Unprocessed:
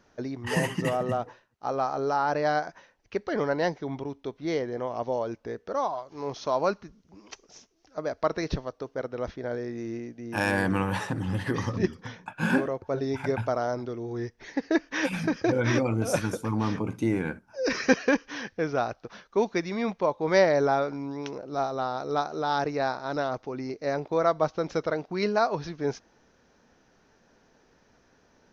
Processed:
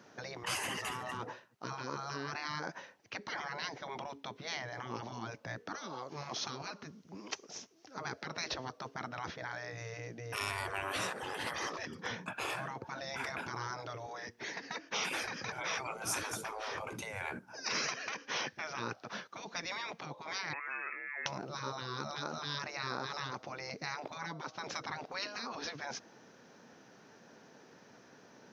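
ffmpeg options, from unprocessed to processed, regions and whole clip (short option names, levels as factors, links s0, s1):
-filter_complex "[0:a]asettb=1/sr,asplit=3[s0][s1][s2];[s0]atrim=end=20.534[s3];[s1]atrim=start=20.53:end=21.26,asetpts=PTS-STARTPTS,afade=t=in:d=0.004:c=qsin,afade=t=out:st=0.726:d=0.004:c=qsin,acompressor=threshold=0.0447:ratio=2:attack=3.2:release=140:knee=1:detection=peak,lowpass=f=2300:t=q:w=0.5098,lowpass=f=2300:t=q:w=0.6013,lowpass=f=2300:t=q:w=0.9,lowpass=f=2300:t=q:w=2.563,afreqshift=-2700[s4];[s2]atrim=start=21.256[s5];[s3][s4]acrossfade=d=0.004:c1=hsin:c2=qsin[s6];[s6][s5]acrossfade=d=0.004:c1=qsin:c2=hsin,acompressor=threshold=0.0447:ratio=12,highpass=f=120:w=0.5412,highpass=f=120:w=1.3066,afftfilt=real='re*lt(hypot(re,im),0.0447)':imag='im*lt(hypot(re,im),0.0447)':win_size=1024:overlap=0.75,volume=1.68"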